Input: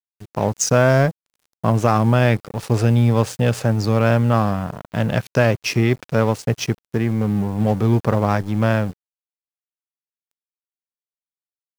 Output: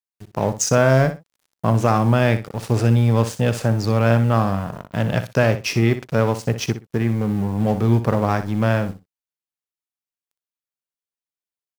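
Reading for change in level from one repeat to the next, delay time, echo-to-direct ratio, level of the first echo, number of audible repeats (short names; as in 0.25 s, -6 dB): -15.0 dB, 61 ms, -11.5 dB, -11.5 dB, 2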